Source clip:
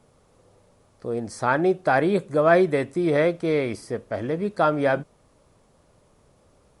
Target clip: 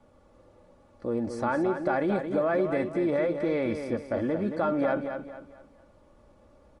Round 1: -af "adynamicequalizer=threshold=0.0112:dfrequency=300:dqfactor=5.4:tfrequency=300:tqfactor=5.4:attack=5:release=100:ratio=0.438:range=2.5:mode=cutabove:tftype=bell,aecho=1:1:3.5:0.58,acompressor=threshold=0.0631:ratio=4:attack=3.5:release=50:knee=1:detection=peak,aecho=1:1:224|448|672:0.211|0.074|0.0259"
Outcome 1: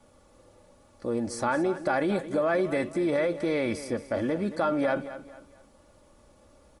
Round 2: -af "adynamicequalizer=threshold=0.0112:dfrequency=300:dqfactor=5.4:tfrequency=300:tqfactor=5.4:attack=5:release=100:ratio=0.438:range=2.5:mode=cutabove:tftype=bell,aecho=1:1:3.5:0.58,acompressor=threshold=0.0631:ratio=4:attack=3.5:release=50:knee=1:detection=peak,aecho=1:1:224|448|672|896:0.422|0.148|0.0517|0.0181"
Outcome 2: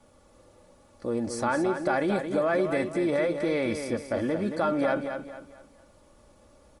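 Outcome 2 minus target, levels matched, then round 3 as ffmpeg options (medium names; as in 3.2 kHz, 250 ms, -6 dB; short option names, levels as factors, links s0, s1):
2 kHz band +2.5 dB
-af "adynamicequalizer=threshold=0.0112:dfrequency=300:dqfactor=5.4:tfrequency=300:tqfactor=5.4:attack=5:release=100:ratio=0.438:range=2.5:mode=cutabove:tftype=bell,aecho=1:1:3.5:0.58,acompressor=threshold=0.0631:ratio=4:attack=3.5:release=50:knee=1:detection=peak,lowpass=f=1700:p=1,aecho=1:1:224|448|672|896:0.422|0.148|0.0517|0.0181"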